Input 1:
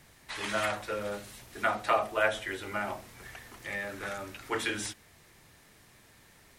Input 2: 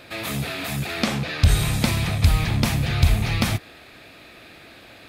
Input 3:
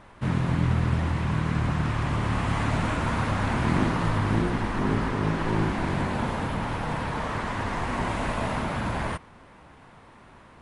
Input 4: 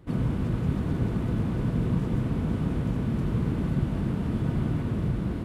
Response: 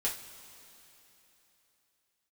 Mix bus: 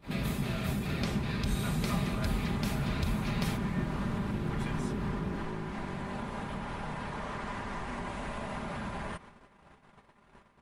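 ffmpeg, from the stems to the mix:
-filter_complex "[0:a]volume=0.355[s0];[1:a]volume=0.473[s1];[2:a]acompressor=threshold=0.0282:ratio=6,volume=1.26[s2];[3:a]volume=0.398[s3];[s0][s1][s2]amix=inputs=3:normalize=0,agate=range=0.0631:threshold=0.00501:ratio=16:detection=peak,acompressor=threshold=0.00562:ratio=1.5,volume=1[s4];[s3][s4]amix=inputs=2:normalize=0,aecho=1:1:5:0.41"

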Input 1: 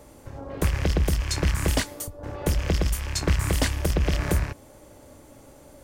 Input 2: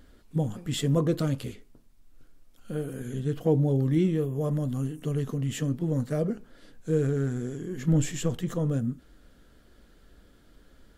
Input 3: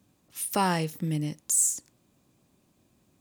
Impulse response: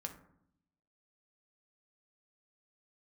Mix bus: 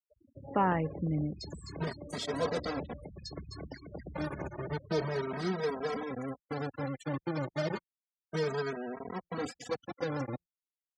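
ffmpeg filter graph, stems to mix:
-filter_complex "[0:a]asoftclip=type=tanh:threshold=0.141,acompressor=threshold=0.0251:ratio=16,adelay=100,volume=0.596,asplit=2[s0][s1];[s1]volume=0.668[s2];[1:a]acrossover=split=360|3000[s3][s4][s5];[s3]acompressor=threshold=0.0251:ratio=6[s6];[s6][s4][s5]amix=inputs=3:normalize=0,acrusher=bits=4:mix=0:aa=0.000001,asplit=2[s7][s8];[s8]adelay=2.8,afreqshift=0.3[s9];[s7][s9]amix=inputs=2:normalize=1,adelay=1450,volume=0.944[s10];[2:a]lowpass=2300,volume=0.794[s11];[s2]aecho=0:1:257|514|771|1028|1285|1542:1|0.41|0.168|0.0689|0.0283|0.0116[s12];[s0][s10][s11][s12]amix=inputs=4:normalize=0,afftfilt=real='re*gte(hypot(re,im),0.0141)':imag='im*gte(hypot(re,im),0.0141)':win_size=1024:overlap=0.75,highpass=120,equalizer=f=2800:t=q:w=4:g=-8,equalizer=f=4800:t=q:w=4:g=6,equalizer=f=7100:t=q:w=4:g=-8,lowpass=f=8000:w=0.5412,lowpass=f=8000:w=1.3066"

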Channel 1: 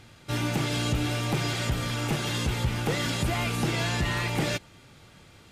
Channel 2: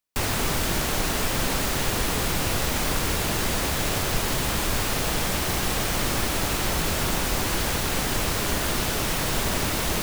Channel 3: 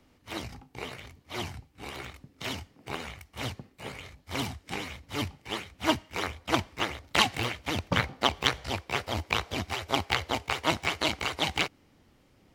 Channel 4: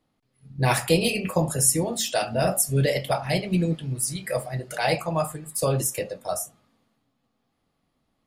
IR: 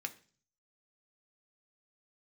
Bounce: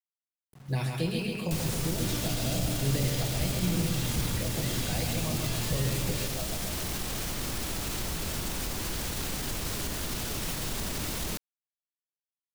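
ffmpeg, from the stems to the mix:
-filter_complex "[0:a]adelay=1700,volume=0.531[s0];[1:a]alimiter=limit=0.0708:level=0:latency=1:release=80,adelay=1350,volume=1.06[s1];[3:a]acrossover=split=4100[s2][s3];[s3]acompressor=threshold=0.00891:ratio=4:attack=1:release=60[s4];[s2][s4]amix=inputs=2:normalize=0,acrusher=bits=7:mix=0:aa=0.000001,adelay=100,volume=0.473,asplit=2[s5][s6];[s6]volume=0.596,aecho=0:1:134|268|402|536|670|804|938|1072|1206:1|0.58|0.336|0.195|0.113|0.0656|0.0381|0.0221|0.0128[s7];[s0][s1][s5][s7]amix=inputs=4:normalize=0,acrossover=split=350|3000[s8][s9][s10];[s9]acompressor=threshold=0.00891:ratio=4[s11];[s8][s11][s10]amix=inputs=3:normalize=0"

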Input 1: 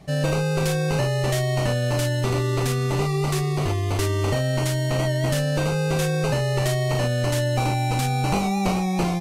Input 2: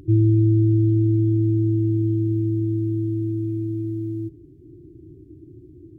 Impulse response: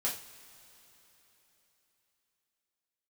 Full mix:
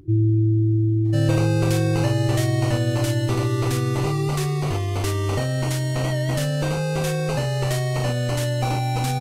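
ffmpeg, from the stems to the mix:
-filter_complex "[0:a]adelay=1050,volume=0.75,asplit=2[s0][s1];[s1]volume=0.237[s2];[1:a]volume=0.631,asplit=2[s3][s4];[s4]volume=0.141[s5];[2:a]atrim=start_sample=2205[s6];[s2][s5]amix=inputs=2:normalize=0[s7];[s7][s6]afir=irnorm=-1:irlink=0[s8];[s0][s3][s8]amix=inputs=3:normalize=0"

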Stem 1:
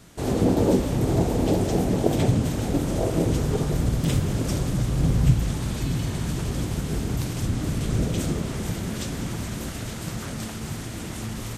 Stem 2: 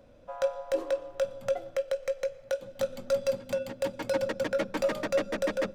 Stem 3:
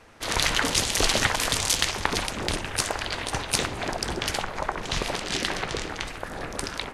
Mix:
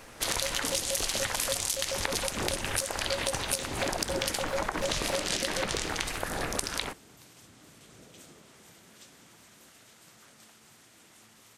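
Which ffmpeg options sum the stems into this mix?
-filter_complex "[0:a]highpass=f=950:p=1,volume=0.141[s0];[1:a]volume=0.708[s1];[2:a]aemphasis=mode=production:type=50kf,acompressor=threshold=0.0562:ratio=2.5,volume=1.19[s2];[s0][s1][s2]amix=inputs=3:normalize=0,acompressor=threshold=0.0501:ratio=6"

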